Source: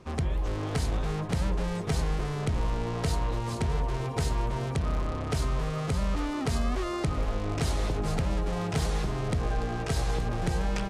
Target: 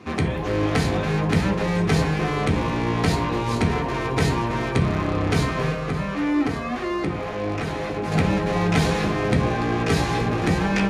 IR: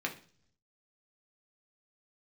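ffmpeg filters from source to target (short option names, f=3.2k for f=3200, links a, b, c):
-filter_complex "[0:a]asettb=1/sr,asplit=3[a][b][c];[a]atrim=end=5.714[d];[b]atrim=start=5.71:end=8.12,asetpts=PTS-STARTPTS,afade=t=in:d=0.004:c=qsin,afade=t=out:st=2.406:d=0.004:c=qsin,acrossover=split=400|2600[e][f][g];[e]acompressor=threshold=-35dB:ratio=4[h];[f]acompressor=threshold=-39dB:ratio=4[i];[g]acompressor=threshold=-53dB:ratio=4[j];[h][i][j]amix=inputs=3:normalize=0[k];[c]atrim=start=8.116[l];[d][k]acrossfade=d=0.004:c1=hsin:c2=qsin[m];[m][l]acrossfade=d=0.004:c1=qsin:c2=hsin[n];[1:a]atrim=start_sample=2205[o];[n][o]afir=irnorm=-1:irlink=0,volume=7.5dB"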